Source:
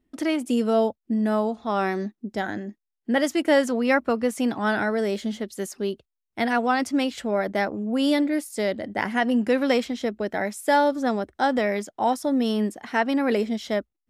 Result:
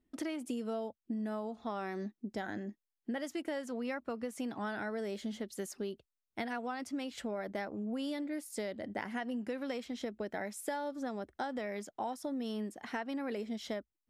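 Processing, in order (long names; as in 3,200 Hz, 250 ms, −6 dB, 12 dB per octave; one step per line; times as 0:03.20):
downward compressor 10 to 1, threshold −28 dBFS, peak gain reduction 14 dB
level −6.5 dB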